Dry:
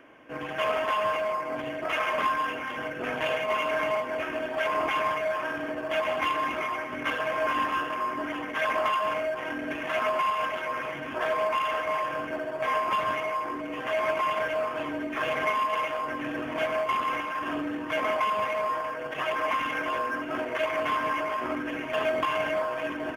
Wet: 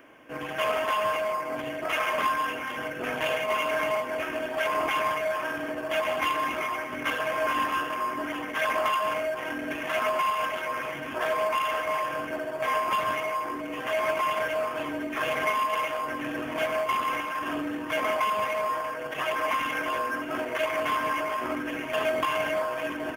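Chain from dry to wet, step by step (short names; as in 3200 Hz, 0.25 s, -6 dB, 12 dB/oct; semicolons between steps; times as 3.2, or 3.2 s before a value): high shelf 7200 Hz +12 dB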